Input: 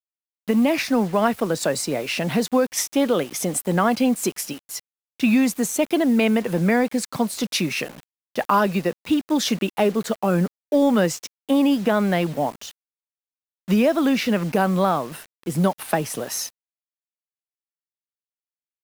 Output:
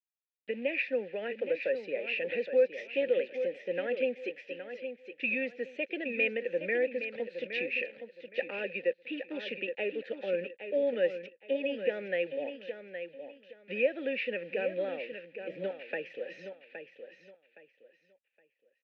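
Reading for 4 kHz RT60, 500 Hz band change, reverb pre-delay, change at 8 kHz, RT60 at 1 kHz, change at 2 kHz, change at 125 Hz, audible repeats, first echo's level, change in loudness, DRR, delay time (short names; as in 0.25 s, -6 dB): none, -7.5 dB, none, under -40 dB, none, -5.5 dB, -28.0 dB, 3, -9.0 dB, -12.0 dB, none, 0.817 s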